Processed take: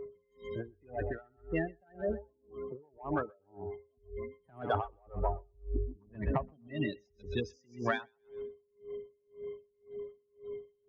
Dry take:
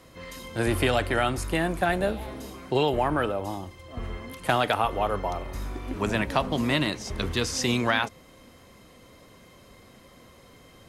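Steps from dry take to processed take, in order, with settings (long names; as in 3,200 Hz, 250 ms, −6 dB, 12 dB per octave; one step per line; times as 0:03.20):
gate on every frequency bin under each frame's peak −10 dB strong
0:04.45–0:06.68: low-shelf EQ 300 Hz +11.5 dB
steady tone 410 Hz −34 dBFS
soft clipping −11.5 dBFS, distortion −24 dB
feedback echo with a high-pass in the loop 127 ms, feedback 24%, high-pass 560 Hz, level −9 dB
tremolo with a sine in dB 1.9 Hz, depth 37 dB
level −4 dB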